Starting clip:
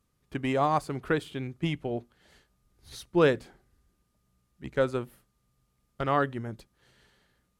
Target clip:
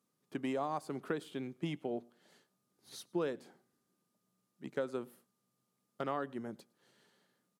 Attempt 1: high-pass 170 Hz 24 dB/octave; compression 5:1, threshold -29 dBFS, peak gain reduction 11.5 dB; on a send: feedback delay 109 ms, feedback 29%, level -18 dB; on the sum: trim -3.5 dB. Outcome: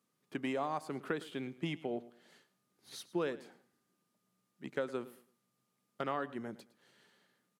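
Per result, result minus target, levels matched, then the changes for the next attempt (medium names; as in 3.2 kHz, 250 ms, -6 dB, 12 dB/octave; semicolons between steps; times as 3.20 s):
echo-to-direct +9.5 dB; 2 kHz band +3.0 dB
change: feedback delay 109 ms, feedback 29%, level -27.5 dB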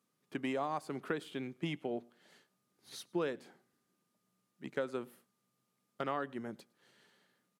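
2 kHz band +3.0 dB
add after high-pass: peaking EQ 2.2 kHz -5 dB 1.5 oct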